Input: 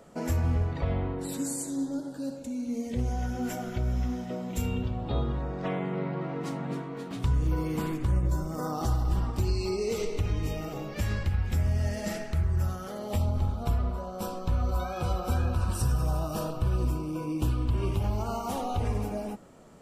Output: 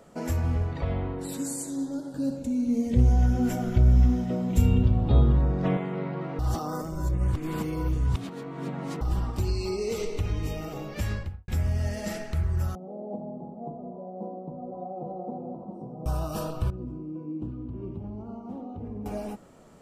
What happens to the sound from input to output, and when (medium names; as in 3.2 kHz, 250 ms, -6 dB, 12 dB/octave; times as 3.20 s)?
2.14–5.77 s: bass shelf 310 Hz +11.5 dB
6.39–9.01 s: reverse
11.07–11.48 s: studio fade out
12.75–16.06 s: elliptic band-pass 170–760 Hz
16.70–19.06 s: band-pass filter 240 Hz, Q 1.6